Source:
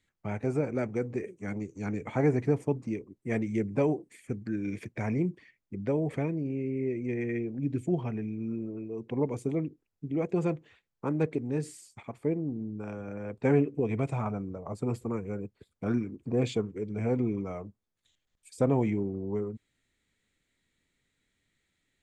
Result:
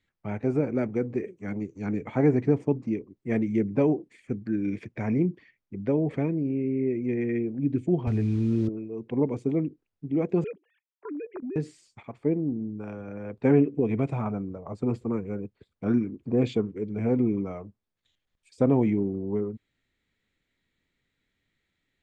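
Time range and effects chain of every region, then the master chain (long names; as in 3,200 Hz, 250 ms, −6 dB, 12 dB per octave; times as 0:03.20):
0:08.07–0:08.69: one scale factor per block 5 bits + low shelf with overshoot 120 Hz +12 dB, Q 1.5 + envelope flattener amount 70%
0:10.44–0:11.56: three sine waves on the formant tracks + output level in coarse steps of 18 dB
whole clip: low-pass filter 4,700 Hz 12 dB per octave; dynamic equaliser 260 Hz, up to +6 dB, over −38 dBFS, Q 0.9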